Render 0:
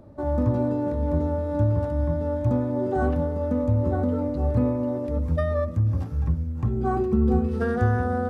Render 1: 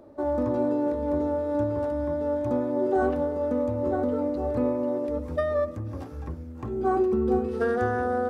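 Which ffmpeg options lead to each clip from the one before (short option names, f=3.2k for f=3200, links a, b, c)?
-af "lowshelf=f=230:t=q:w=1.5:g=-11"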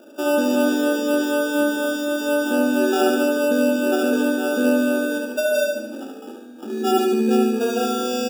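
-filter_complex "[0:a]afftfilt=real='re*between(b*sr/4096,200,960)':imag='im*between(b*sr/4096,200,960)':win_size=4096:overlap=0.75,acrossover=split=490[a][b];[b]acrusher=samples=21:mix=1:aa=0.000001[c];[a][c]amix=inputs=2:normalize=0,aecho=1:1:72|144|216|288|360|432|504:0.668|0.334|0.167|0.0835|0.0418|0.0209|0.0104,volume=4.5dB"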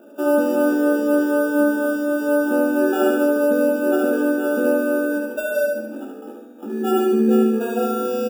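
-filter_complex "[0:a]equalizer=f=4.7k:t=o:w=1.6:g=-14,asplit=2[a][b];[b]adelay=14,volume=-5dB[c];[a][c]amix=inputs=2:normalize=0"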